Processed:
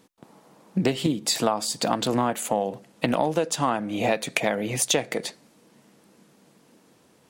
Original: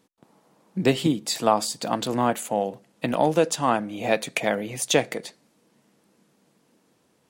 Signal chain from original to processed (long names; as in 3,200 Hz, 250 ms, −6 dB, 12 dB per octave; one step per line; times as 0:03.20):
downward compressor 6 to 1, threshold −26 dBFS, peak gain reduction 12.5 dB
highs frequency-modulated by the lows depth 0.12 ms
level +6.5 dB